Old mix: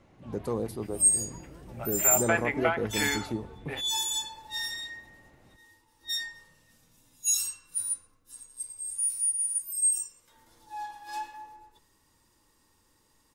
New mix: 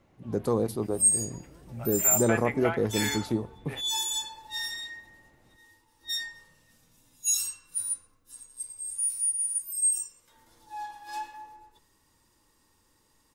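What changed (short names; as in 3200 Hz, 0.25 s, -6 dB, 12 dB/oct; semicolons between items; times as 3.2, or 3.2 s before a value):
speech +5.0 dB; first sound -4.0 dB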